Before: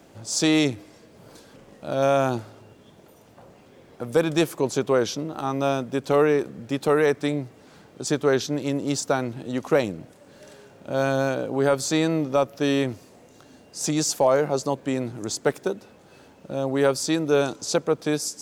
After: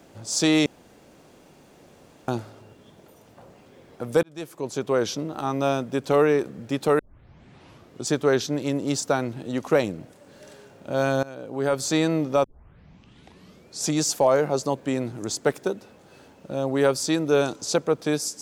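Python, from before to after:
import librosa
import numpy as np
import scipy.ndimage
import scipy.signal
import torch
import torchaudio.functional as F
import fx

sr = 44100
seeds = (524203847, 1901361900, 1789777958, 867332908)

y = fx.edit(x, sr, fx.room_tone_fill(start_s=0.66, length_s=1.62),
    fx.fade_in_span(start_s=4.23, length_s=0.9),
    fx.tape_start(start_s=6.99, length_s=1.08),
    fx.fade_in_from(start_s=11.23, length_s=0.67, floor_db=-21.0),
    fx.tape_start(start_s=12.44, length_s=1.45), tone=tone)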